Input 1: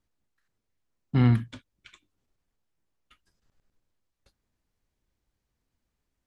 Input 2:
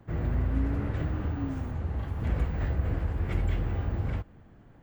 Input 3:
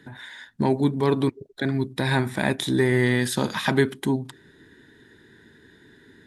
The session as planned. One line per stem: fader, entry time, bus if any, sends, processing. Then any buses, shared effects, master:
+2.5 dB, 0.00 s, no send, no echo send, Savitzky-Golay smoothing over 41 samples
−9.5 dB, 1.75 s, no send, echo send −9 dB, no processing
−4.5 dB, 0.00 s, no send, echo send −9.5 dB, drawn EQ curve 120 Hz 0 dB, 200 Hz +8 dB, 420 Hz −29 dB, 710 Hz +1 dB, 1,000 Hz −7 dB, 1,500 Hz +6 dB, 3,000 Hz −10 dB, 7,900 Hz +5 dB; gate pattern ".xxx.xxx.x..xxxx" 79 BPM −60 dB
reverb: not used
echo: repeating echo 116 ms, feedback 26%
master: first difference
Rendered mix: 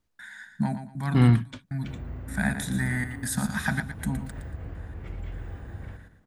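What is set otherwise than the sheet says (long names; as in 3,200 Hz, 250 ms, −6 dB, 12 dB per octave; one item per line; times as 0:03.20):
stem 1: missing Savitzky-Golay smoothing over 41 samples
master: missing first difference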